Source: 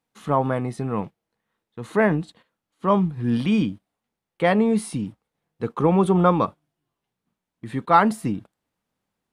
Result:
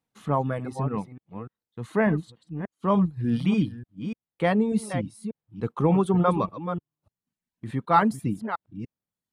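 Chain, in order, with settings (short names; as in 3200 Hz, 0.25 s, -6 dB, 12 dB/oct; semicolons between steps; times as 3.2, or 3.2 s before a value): reverse delay 0.295 s, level -8.5 dB; bell 110 Hz +6 dB 1.9 oct; reverb removal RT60 0.81 s; gain -4.5 dB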